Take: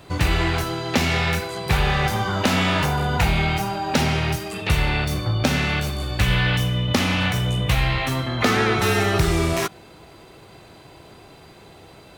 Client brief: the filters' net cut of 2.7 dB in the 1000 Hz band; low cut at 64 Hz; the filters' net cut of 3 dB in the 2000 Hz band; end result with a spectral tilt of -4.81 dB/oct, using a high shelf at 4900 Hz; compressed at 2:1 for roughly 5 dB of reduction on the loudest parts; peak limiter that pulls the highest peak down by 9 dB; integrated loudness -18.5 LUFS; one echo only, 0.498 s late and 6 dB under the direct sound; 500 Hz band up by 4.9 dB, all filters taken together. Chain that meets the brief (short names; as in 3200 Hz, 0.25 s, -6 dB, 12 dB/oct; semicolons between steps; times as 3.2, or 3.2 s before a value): HPF 64 Hz; bell 500 Hz +8 dB; bell 1000 Hz -6.5 dB; bell 2000 Hz -3.5 dB; high shelf 4900 Hz +6 dB; compressor 2:1, threshold -22 dBFS; limiter -15 dBFS; echo 0.498 s -6 dB; gain +6 dB